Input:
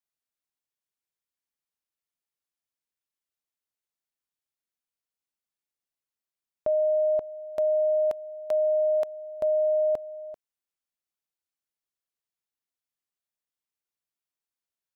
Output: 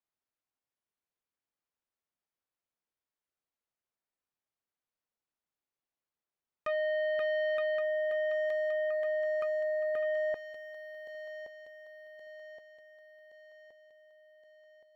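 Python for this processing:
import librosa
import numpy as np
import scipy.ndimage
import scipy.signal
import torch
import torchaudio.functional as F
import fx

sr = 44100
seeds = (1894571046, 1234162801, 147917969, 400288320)

y = fx.lowpass(x, sr, hz=1000.0, slope=6)
y = fx.low_shelf(y, sr, hz=420.0, db=-5.0)
y = fx.over_compress(y, sr, threshold_db=-35.0, ratio=-1.0)
y = fx.leveller(y, sr, passes=3)
y = fx.echo_feedback(y, sr, ms=1121, feedback_pct=53, wet_db=-15.5)
y = fx.transformer_sat(y, sr, knee_hz=1100.0)
y = y * librosa.db_to_amplitude(4.5)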